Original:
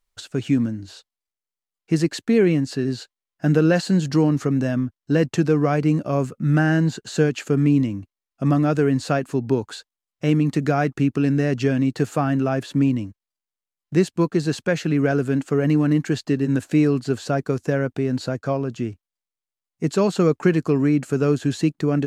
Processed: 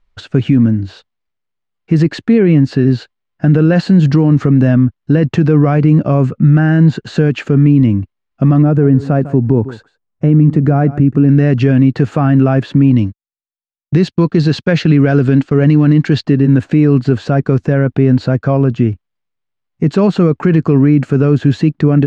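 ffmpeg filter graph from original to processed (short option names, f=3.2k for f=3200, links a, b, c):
-filter_complex "[0:a]asettb=1/sr,asplit=3[a][b][c];[a]atrim=end=8.624[d];[b]atrim=start=8.62:end=11.29,asetpts=PTS-STARTPTS,afade=t=in:d=0.004:c=qsin,afade=t=out:st=2.666:d=0.004:c=qsin,equalizer=f=3.5k:w=0.49:g=-13.5,aecho=1:1:150:0.112,atrim=end_sample=117747[e];[c]atrim=start=11.286[f];[d][e]acrossfade=d=0.004:c1=hsin:c2=qsin[g];[g][f]acrossfade=d=0.004:c1=qsin:c2=hsin,asettb=1/sr,asplit=3[h][i][j];[h]atrim=end=12.914[k];[i]atrim=start=12.91:end=16.24,asetpts=PTS-STARTPTS,afade=t=in:d=0.004:c=qsin,afade=t=out:st=3.326:d=0.004:c=qsin,agate=range=-33dB:threshold=-34dB:ratio=3:release=100:detection=peak,equalizer=f=4.4k:t=o:w=1.2:g=8[l];[j]atrim=start=16.236[m];[k][l]acrossfade=d=0.004:c1=hsin:c2=qsin[n];[n][m]acrossfade=d=0.004:c1=qsin:c2=hsin,lowpass=5.4k,bass=f=250:g=7,treble=f=4k:g=-11,alimiter=level_in=11.5dB:limit=-1dB:release=50:level=0:latency=1,volume=-1dB"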